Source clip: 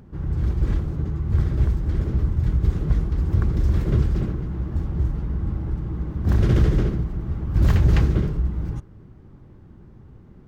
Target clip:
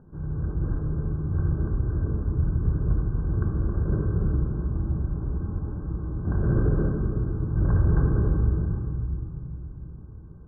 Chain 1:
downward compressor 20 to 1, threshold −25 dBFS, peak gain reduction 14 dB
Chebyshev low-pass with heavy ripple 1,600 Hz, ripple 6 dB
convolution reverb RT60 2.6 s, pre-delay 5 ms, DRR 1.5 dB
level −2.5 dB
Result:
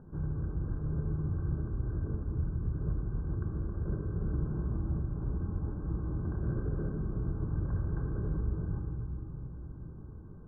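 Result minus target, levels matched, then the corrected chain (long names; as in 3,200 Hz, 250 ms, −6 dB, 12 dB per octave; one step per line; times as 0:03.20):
downward compressor: peak gain reduction +14 dB
Chebyshev low-pass with heavy ripple 1,600 Hz, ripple 6 dB
convolution reverb RT60 2.6 s, pre-delay 5 ms, DRR 1.5 dB
level −2.5 dB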